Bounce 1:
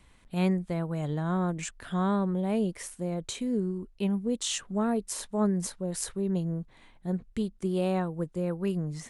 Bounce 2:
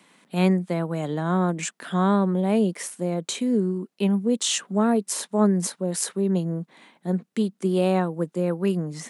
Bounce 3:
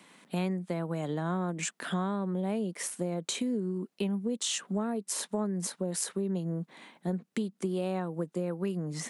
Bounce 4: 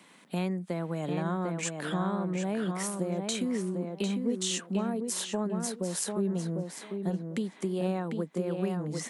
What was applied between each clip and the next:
steep high-pass 170 Hz; trim +7 dB
compression 6:1, threshold -29 dBFS, peak gain reduction 14.5 dB
tape echo 748 ms, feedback 21%, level -3.5 dB, low-pass 3.3 kHz

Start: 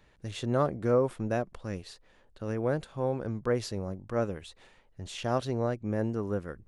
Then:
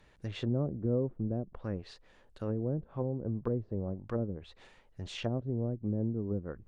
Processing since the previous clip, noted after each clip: low-pass that closes with the level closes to 320 Hz, closed at -27.5 dBFS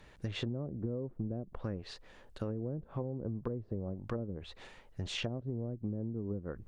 compression 10:1, threshold -38 dBFS, peak gain reduction 13.5 dB; trim +5 dB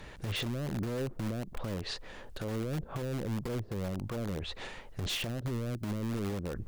in parallel at -5 dB: integer overflow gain 35 dB; on the sum: peak limiter -33 dBFS, peak gain reduction 10.5 dB; trim +6 dB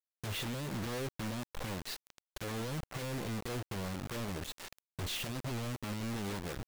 bit crusher 6-bit; trim -4.5 dB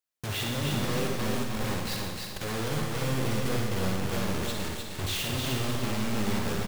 feedback delay 306 ms, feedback 33%, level -4 dB; on a send at -1 dB: reverberation RT60 1.1 s, pre-delay 42 ms; on the sum: trim +5 dB

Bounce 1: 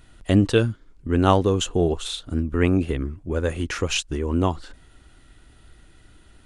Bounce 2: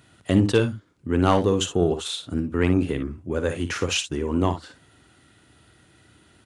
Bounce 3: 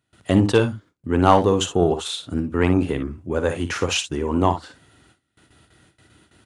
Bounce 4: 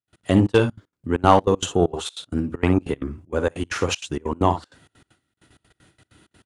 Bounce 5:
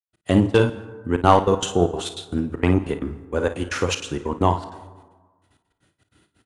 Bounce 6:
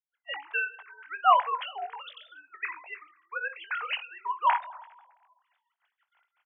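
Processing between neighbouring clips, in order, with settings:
high-pass 87 Hz 24 dB/octave; saturation -6 dBFS, distortion -19 dB; on a send: multi-tap echo 56/66 ms -10/-19 dB
gate with hold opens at -45 dBFS; dynamic bell 850 Hz, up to +7 dB, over -39 dBFS, Q 1.5; trim +1.5 dB
trance gate ".x.xxx.xx" 194 bpm -24 dB
expander -48 dBFS; on a send: early reflections 34 ms -14.5 dB, 54 ms -13 dB; on the sum: plate-style reverb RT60 1.4 s, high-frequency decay 0.4×, pre-delay 115 ms, DRR 17 dB
formants replaced by sine waves; steep high-pass 790 Hz 36 dB/octave; doubling 21 ms -11 dB; trim -2 dB

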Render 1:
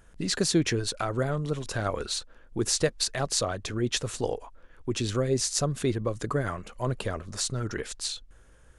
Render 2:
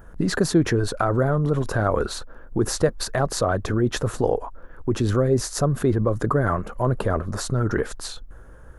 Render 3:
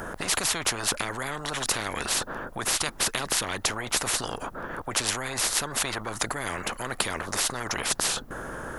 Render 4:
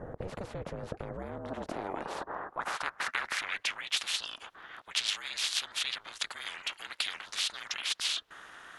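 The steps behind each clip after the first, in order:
high-order bell 4.5 kHz -14.5 dB 2.5 oct; in parallel at -2.5 dB: compressor with a negative ratio -33 dBFS, ratio -1; on the sum: trim +5 dB
spectrum-flattening compressor 10:1
band-pass sweep 300 Hz -> 3.3 kHz, 1.12–4.00 s; ring modulator 190 Hz; trim +5.5 dB

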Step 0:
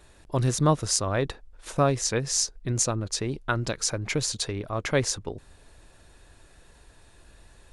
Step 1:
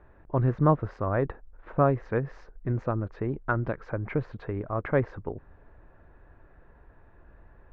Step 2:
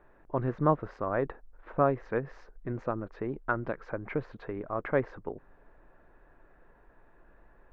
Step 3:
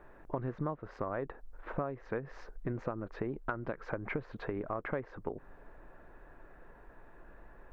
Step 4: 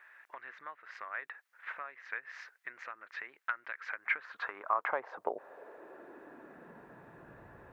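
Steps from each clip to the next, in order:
low-pass 1.7 kHz 24 dB/octave
peaking EQ 78 Hz -14.5 dB 1.5 oct; trim -1.5 dB
compression 10:1, threshold -37 dBFS, peak gain reduction 18.5 dB; trim +4.5 dB
high-pass sweep 1.9 kHz -> 95 Hz, 3.97–7.55 s; trim +3.5 dB

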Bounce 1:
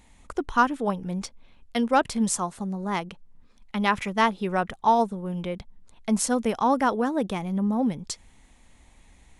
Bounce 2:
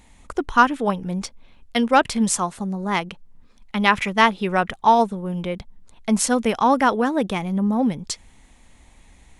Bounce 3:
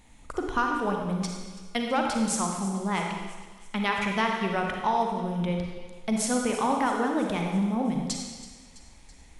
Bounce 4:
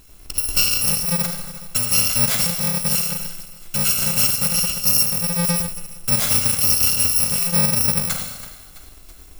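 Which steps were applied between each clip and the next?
dynamic bell 2.5 kHz, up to +5 dB, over -40 dBFS, Q 0.82; trim +4 dB
compression 2.5:1, threshold -22 dBFS, peak gain reduction 9.5 dB; feedback echo behind a high-pass 330 ms, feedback 61%, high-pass 3.2 kHz, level -15.5 dB; reverberation RT60 1.4 s, pre-delay 32 ms, DRR 1 dB; trim -4.5 dB
bit-reversed sample order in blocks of 128 samples; trim +8 dB

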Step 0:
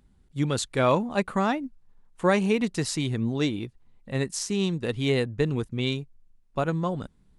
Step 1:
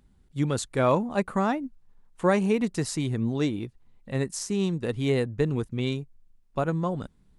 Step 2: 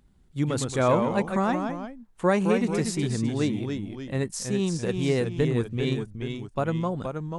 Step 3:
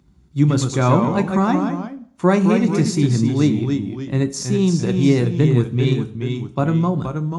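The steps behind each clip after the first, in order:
dynamic bell 3.4 kHz, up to -6 dB, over -44 dBFS, Q 0.81
ever faster or slower copies 81 ms, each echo -1 st, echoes 2, each echo -6 dB
reverberation RT60 0.55 s, pre-delay 3 ms, DRR 8.5 dB; trim +1.5 dB

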